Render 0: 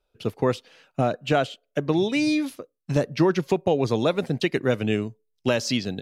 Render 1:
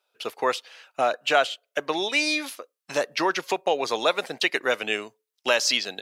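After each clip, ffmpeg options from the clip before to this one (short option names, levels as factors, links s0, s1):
-af "highpass=790,volume=2.11"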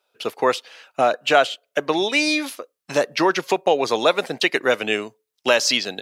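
-af "lowshelf=f=420:g=7.5,volume=1.41"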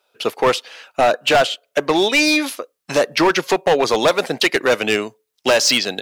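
-af "asoftclip=type=hard:threshold=0.178,volume=1.88"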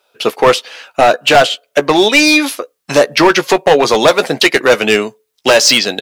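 -filter_complex "[0:a]asplit=2[s0][s1];[s1]adelay=14,volume=0.282[s2];[s0][s2]amix=inputs=2:normalize=0,volume=2"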